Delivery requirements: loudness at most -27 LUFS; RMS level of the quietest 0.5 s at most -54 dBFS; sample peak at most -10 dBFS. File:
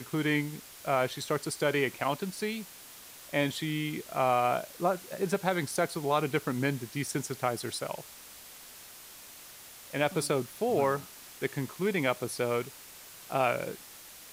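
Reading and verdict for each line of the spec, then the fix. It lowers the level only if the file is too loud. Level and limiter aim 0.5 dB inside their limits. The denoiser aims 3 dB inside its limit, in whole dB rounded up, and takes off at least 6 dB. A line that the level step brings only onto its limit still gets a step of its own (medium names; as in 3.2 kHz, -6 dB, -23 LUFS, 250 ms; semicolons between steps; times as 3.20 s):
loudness -31.0 LUFS: pass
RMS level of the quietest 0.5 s -50 dBFS: fail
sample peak -13.0 dBFS: pass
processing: noise reduction 7 dB, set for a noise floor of -50 dBFS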